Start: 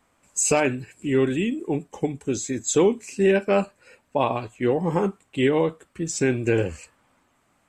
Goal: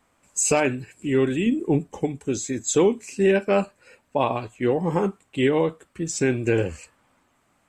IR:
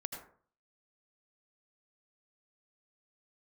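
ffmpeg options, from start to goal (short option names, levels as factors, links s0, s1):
-filter_complex "[0:a]asettb=1/sr,asplit=3[s0][s1][s2];[s0]atrim=end=1.464[s3];[s1]atrim=start=1.46:end=2.02,asetpts=PTS-STARTPTS,afade=t=in:d=0.004:c=qsin,afade=t=out:st=0.556:d=0.004:c=qsin,lowshelf=f=350:g=8[s4];[s2]atrim=start=2.016[s5];[s3][s4]acrossfade=d=0.004:c1=hsin:c2=qsin[s6];[s6][s5]acrossfade=d=0.004:c1=qsin:c2=hsin"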